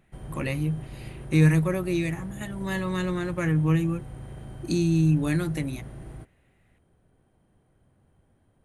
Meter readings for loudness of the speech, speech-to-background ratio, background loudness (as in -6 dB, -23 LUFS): -26.0 LUFS, 15.5 dB, -41.5 LUFS